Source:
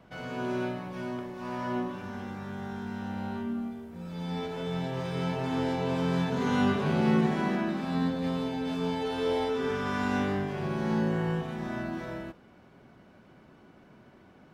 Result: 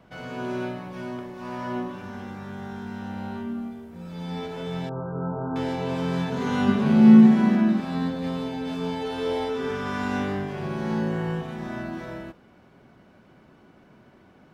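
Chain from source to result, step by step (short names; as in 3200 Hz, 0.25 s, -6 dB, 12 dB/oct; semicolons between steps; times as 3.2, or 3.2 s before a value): 4.89–5.56 brick-wall FIR low-pass 1600 Hz; 6.68–7.8 bell 220 Hz +14 dB 0.27 oct; gain +1.5 dB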